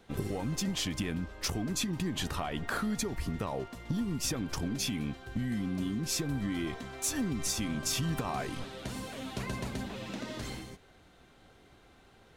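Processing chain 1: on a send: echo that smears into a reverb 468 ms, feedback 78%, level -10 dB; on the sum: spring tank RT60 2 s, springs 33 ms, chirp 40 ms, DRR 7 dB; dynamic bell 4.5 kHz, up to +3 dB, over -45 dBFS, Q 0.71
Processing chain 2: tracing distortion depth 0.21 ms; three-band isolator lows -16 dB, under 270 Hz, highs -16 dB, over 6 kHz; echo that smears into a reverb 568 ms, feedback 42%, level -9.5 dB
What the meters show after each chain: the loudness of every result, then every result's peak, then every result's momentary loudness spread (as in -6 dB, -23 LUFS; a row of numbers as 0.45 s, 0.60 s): -32.0 LUFS, -39.0 LUFS; -18.0 dBFS, -20.0 dBFS; 13 LU, 10 LU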